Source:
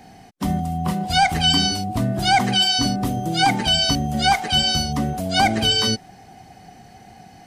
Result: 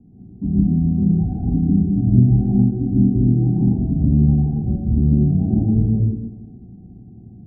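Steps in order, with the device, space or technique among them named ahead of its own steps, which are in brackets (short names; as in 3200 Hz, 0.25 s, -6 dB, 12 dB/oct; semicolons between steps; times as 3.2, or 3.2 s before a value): next room (LPF 300 Hz 24 dB/oct; reverb RT60 1.0 s, pre-delay 0.1 s, DRR -6.5 dB); gain +1 dB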